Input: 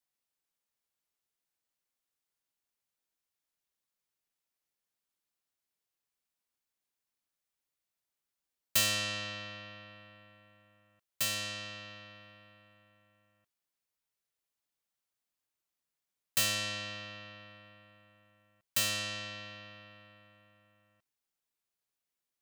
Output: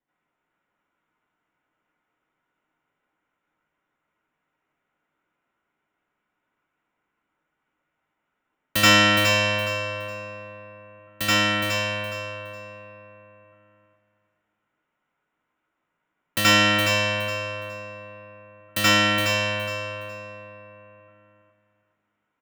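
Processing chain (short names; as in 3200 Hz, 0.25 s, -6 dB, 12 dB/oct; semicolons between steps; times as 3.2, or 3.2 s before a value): Wiener smoothing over 9 samples; feedback echo 0.416 s, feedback 26%, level -6 dB; reverb RT60 0.35 s, pre-delay 75 ms, DRR -9.5 dB; gain +4.5 dB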